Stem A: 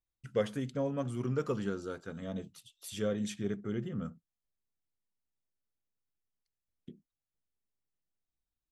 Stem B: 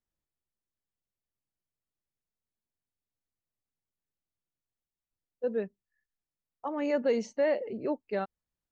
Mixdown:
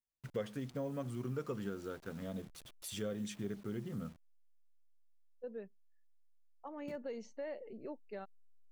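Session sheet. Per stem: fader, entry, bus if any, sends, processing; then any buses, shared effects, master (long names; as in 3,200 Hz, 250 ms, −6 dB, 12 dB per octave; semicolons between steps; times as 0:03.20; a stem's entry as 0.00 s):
+1.0 dB, 0.00 s, no send, hold until the input has moved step −52 dBFS
−12.0 dB, 0.00 s, no send, no processing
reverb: not used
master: downward compressor 2 to 1, threshold −42 dBFS, peak gain reduction 10.5 dB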